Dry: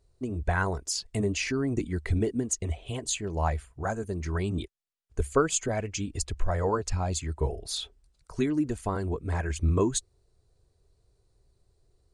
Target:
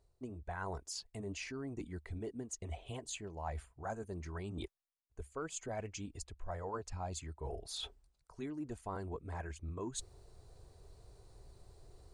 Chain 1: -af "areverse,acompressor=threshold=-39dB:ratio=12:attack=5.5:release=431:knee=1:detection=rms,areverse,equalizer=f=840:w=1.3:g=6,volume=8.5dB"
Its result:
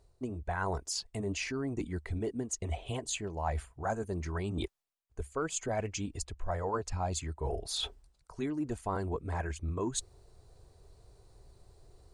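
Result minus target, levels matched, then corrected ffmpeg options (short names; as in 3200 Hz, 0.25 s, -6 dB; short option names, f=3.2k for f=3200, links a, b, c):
compressor: peak gain reduction -8 dB
-af "areverse,acompressor=threshold=-47.5dB:ratio=12:attack=5.5:release=431:knee=1:detection=rms,areverse,equalizer=f=840:w=1.3:g=6,volume=8.5dB"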